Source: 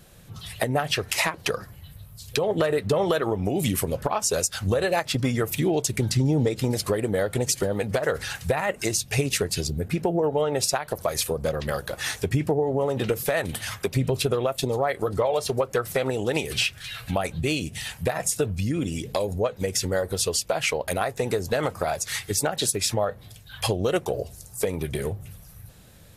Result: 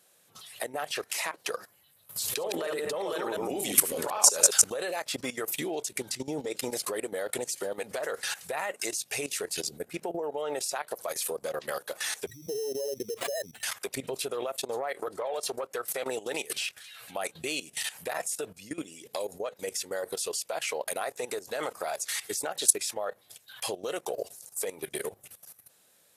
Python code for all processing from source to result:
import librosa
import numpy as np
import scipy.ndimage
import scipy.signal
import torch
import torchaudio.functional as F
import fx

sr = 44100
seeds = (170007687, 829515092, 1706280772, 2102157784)

y = fx.chain(x, sr, fx.reverse_delay(ms=116, wet_db=-3.0),
    fx.notch(hz=690.0, q=16.0),
    fx.env_flatten(amount_pct=70), at=(2.09, 4.7))
y = fx.chain(y, sr, fx.spec_expand(power=2.7),
    fx.sample_hold(seeds[0], rate_hz=5800.0, jitter_pct=0),
    fx.pre_swell(db_per_s=71.0), at=(12.27, 13.63))
y = fx.chain(y, sr, fx.high_shelf(hz=3600.0, db=-3.5),
    fx.transformer_sat(knee_hz=410.0), at=(14.52, 15.74))
y = scipy.signal.sosfilt(scipy.signal.butter(2, 410.0, 'highpass', fs=sr, output='sos'), y)
y = fx.peak_eq(y, sr, hz=9600.0, db=6.5, octaves=1.4)
y = fx.level_steps(y, sr, step_db=16)